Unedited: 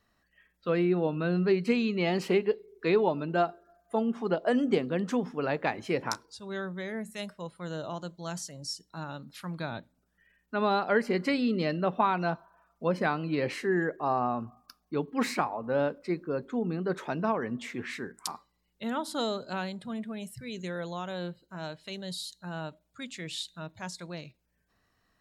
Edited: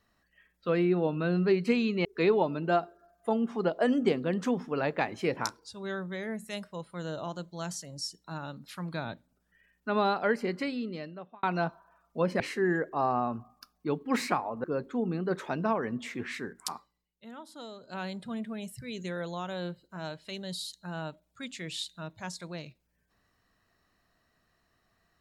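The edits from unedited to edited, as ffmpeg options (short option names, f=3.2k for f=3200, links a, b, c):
-filter_complex "[0:a]asplit=7[a][b][c][d][e][f][g];[a]atrim=end=2.052[h];[b]atrim=start=2.708:end=12.09,asetpts=PTS-STARTPTS,afade=t=out:st=7.972:d=1.41[i];[c]atrim=start=12.09:end=13.062,asetpts=PTS-STARTPTS,afade=t=in:d=0.004:c=hsin[j];[d]atrim=start=13.468:end=15.712[k];[e]atrim=start=16.228:end=18.68,asetpts=PTS-STARTPTS,afade=t=out:st=2.102:d=0.35:silence=0.211349[l];[f]atrim=start=18.68:end=19.38,asetpts=PTS-STARTPTS,volume=-13.5dB[m];[g]atrim=start=19.38,asetpts=PTS-STARTPTS,afade=t=in:d=0.35:silence=0.211349[n];[i][j]concat=n=2:v=0:a=1[o];[h][o]acrossfade=d=0.004:c1=hsin:c2=hsin[p];[p][k]acrossfade=d=0.004:c1=hsin:c2=hsin[q];[l][m][n]concat=n=3:v=0:a=1[r];[q][r]acrossfade=d=0.004:c1=hsin:c2=hsin"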